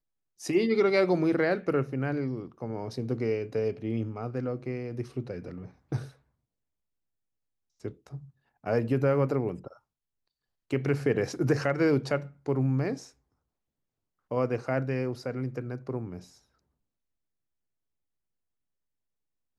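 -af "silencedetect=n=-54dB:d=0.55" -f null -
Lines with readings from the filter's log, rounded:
silence_start: 6.16
silence_end: 7.80 | silence_duration: 1.64
silence_start: 9.78
silence_end: 10.71 | silence_duration: 0.93
silence_start: 13.12
silence_end: 14.31 | silence_duration: 1.19
silence_start: 16.39
silence_end: 19.58 | silence_duration: 3.19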